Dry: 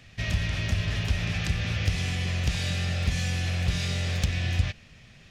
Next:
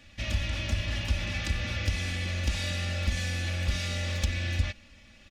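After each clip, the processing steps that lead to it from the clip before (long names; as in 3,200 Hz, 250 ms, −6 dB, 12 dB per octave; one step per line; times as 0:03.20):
comb filter 3.5 ms, depth 91%
level −4 dB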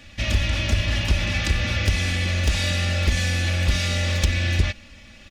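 wavefolder on the positive side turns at −21 dBFS
level +8.5 dB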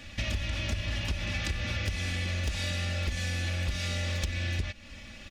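downward compressor 4 to 1, threshold −30 dBFS, peak gain reduction 14 dB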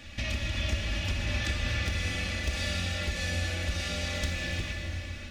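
dense smooth reverb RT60 3.6 s, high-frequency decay 0.85×, DRR −0.5 dB
level −1.5 dB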